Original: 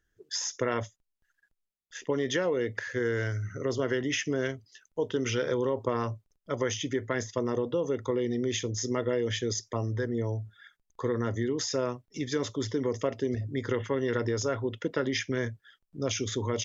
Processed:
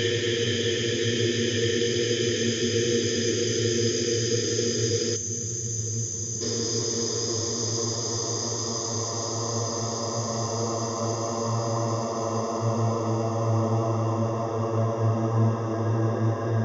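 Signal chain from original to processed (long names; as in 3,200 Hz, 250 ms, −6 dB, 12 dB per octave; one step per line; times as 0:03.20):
extreme stretch with random phases 33×, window 0.50 s, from 0:09.37
feedback delay with all-pass diffusion 1,542 ms, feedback 58%, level −16 dB
gain on a spectral selection 0:05.16–0:06.41, 230–5,900 Hz −13 dB
level +6 dB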